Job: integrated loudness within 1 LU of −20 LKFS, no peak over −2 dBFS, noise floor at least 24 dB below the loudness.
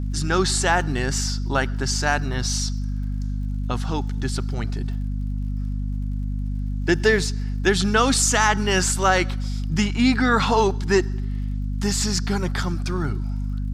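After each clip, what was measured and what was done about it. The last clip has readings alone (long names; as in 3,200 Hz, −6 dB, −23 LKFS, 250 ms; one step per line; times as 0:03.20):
crackle rate 51 per second; mains hum 50 Hz; hum harmonics up to 250 Hz; level of the hum −23 dBFS; integrated loudness −22.5 LKFS; sample peak −5.5 dBFS; target loudness −20.0 LKFS
→ click removal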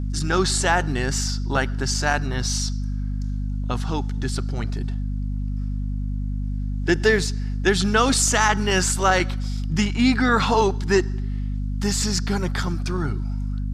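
crackle rate 0.22 per second; mains hum 50 Hz; hum harmonics up to 250 Hz; level of the hum −23 dBFS
→ hum removal 50 Hz, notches 5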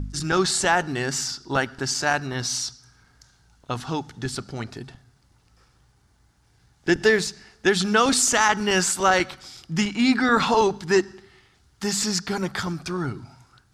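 mains hum none found; integrated loudness −22.5 LKFS; sample peak −6.5 dBFS; target loudness −20.0 LKFS
→ level +2.5 dB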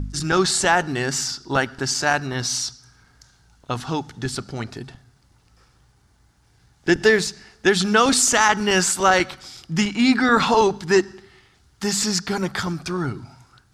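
integrated loudness −20.0 LKFS; sample peak −4.0 dBFS; background noise floor −59 dBFS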